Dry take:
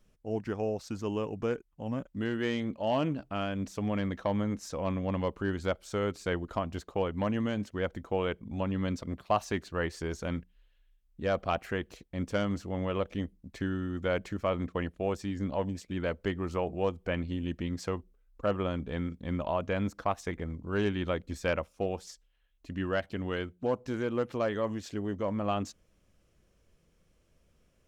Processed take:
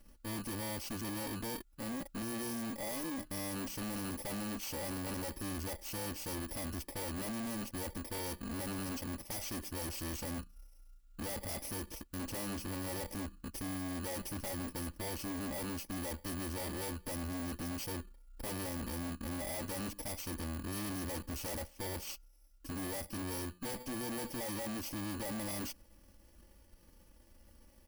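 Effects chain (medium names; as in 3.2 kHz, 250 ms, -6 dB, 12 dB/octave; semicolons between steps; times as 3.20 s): bit-reversed sample order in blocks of 32 samples; comb 3.5 ms, depth 79%; wavefolder -24.5 dBFS; valve stage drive 46 dB, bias 0.65; trim +8 dB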